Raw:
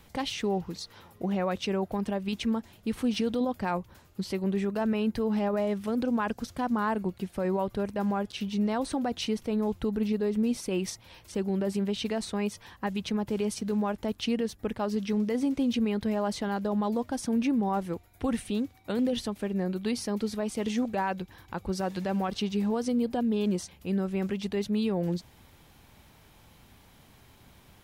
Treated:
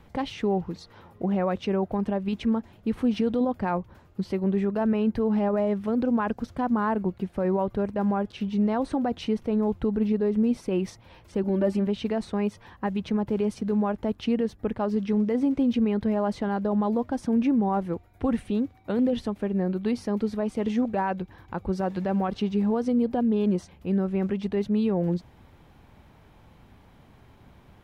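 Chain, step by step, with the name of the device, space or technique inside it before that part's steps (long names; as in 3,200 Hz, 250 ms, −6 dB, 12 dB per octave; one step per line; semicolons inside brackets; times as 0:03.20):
0:11.43–0:11.87: comb filter 3.4 ms, depth 100%
through cloth (high-shelf EQ 3,200 Hz −17.5 dB)
level +4 dB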